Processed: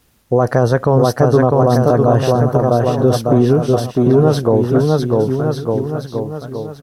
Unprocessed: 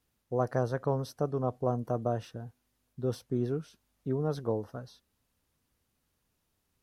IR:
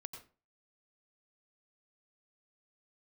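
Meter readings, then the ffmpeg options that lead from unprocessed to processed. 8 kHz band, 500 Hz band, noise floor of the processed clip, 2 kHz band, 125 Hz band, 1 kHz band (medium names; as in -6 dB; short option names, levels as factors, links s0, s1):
+22.0 dB, +20.5 dB, -41 dBFS, +20.5 dB, +20.5 dB, +19.5 dB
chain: -filter_complex "[0:a]asplit=2[s0][s1];[s1]aecho=0:1:650|1202|1672|2071|2411:0.631|0.398|0.251|0.158|0.1[s2];[s0][s2]amix=inputs=2:normalize=0,alimiter=level_in=11.9:limit=0.891:release=50:level=0:latency=1,volume=0.891"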